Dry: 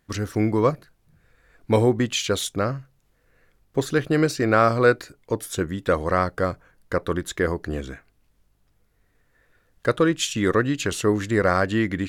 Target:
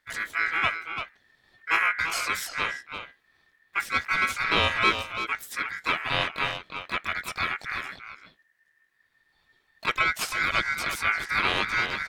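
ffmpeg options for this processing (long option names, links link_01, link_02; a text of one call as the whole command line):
ffmpeg -i in.wav -filter_complex "[0:a]asplit=2[link_01][link_02];[link_02]asetrate=66075,aresample=44100,atempo=0.66742,volume=-2dB[link_03];[link_01][link_03]amix=inputs=2:normalize=0,asplit=2[link_04][link_05];[link_05]adelay=340,highpass=300,lowpass=3400,asoftclip=type=hard:threshold=-12dB,volume=-6dB[link_06];[link_04][link_06]amix=inputs=2:normalize=0,aeval=exprs='val(0)*sin(2*PI*1800*n/s)':channel_layout=same,volume=-5dB" out.wav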